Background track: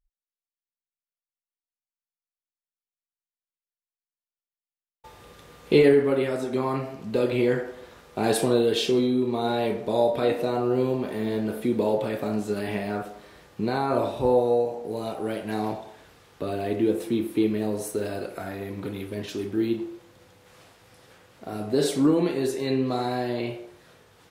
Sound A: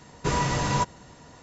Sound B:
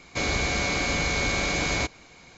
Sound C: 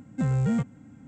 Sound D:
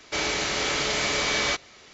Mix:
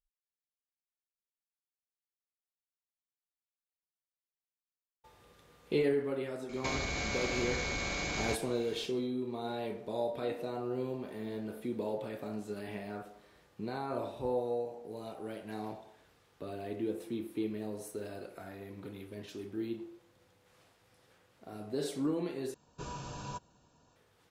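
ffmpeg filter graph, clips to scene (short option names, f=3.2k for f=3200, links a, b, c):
-filter_complex "[0:a]volume=-12.5dB[a];[2:a]acompressor=threshold=-30dB:ratio=6:attack=3.2:release=140:knee=1:detection=peak[b];[1:a]asuperstop=centerf=2000:order=4:qfactor=3.7[c];[a]asplit=2[d][e];[d]atrim=end=22.544[f];[c]atrim=end=1.42,asetpts=PTS-STARTPTS,volume=-17.5dB[g];[e]atrim=start=23.956[h];[b]atrim=end=2.37,asetpts=PTS-STARTPTS,volume=-2dB,afade=t=in:d=0.004:c=hsin,afade=t=out:st=2.366:d=0.004:c=hsin,adelay=6490[i];[f][g]acrossfade=d=0.004:c1=hsin:c2=hsin[j];[j][h]acrossfade=d=0.004:c1=hsin:c2=hsin[k];[k][i]amix=inputs=2:normalize=0"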